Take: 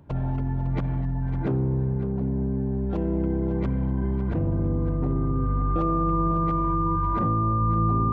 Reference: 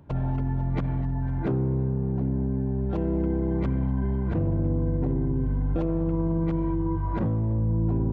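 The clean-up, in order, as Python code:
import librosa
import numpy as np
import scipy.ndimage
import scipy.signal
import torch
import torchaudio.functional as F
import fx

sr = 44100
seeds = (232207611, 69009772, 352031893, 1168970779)

y = fx.notch(x, sr, hz=1200.0, q=30.0)
y = fx.fix_echo_inverse(y, sr, delay_ms=554, level_db=-12.0)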